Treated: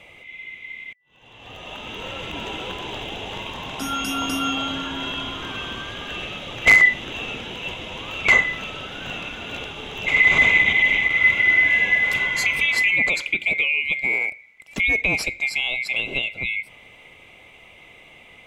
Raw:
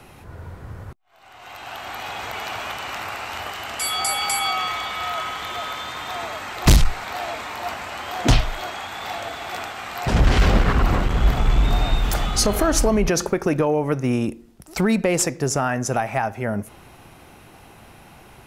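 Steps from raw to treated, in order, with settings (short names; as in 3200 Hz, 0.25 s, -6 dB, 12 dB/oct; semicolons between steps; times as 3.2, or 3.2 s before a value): band-swap scrambler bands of 2000 Hz; LPF 1500 Hz 6 dB/oct; gain +3.5 dB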